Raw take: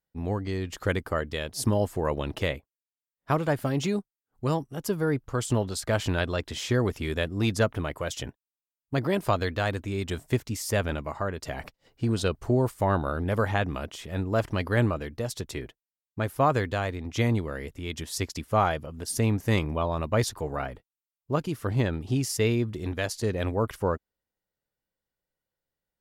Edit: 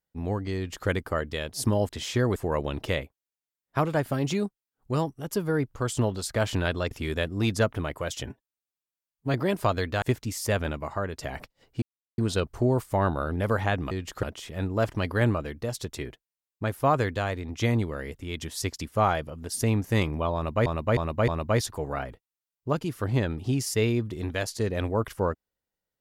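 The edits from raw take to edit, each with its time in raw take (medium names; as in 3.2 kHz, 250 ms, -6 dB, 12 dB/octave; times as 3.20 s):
0.56–0.88 s: copy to 13.79 s
6.44–6.91 s: move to 1.89 s
8.26–8.98 s: stretch 1.5×
9.66–10.26 s: delete
12.06 s: insert silence 0.36 s
19.91–20.22 s: loop, 4 plays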